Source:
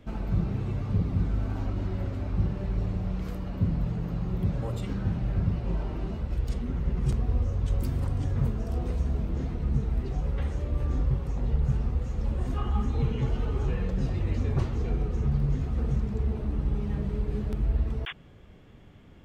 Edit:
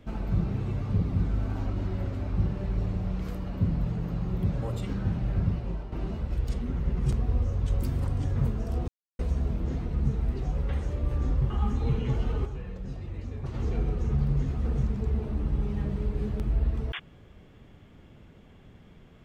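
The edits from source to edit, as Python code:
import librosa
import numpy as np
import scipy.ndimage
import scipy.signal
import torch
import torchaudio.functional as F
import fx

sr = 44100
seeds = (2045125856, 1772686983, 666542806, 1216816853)

y = fx.edit(x, sr, fx.fade_out_to(start_s=5.5, length_s=0.42, floor_db=-9.5),
    fx.insert_silence(at_s=8.88, length_s=0.31),
    fx.cut(start_s=11.19, length_s=1.44),
    fx.fade_down_up(start_s=13.58, length_s=1.1, db=-9.0, fade_s=0.13, curve='exp'), tone=tone)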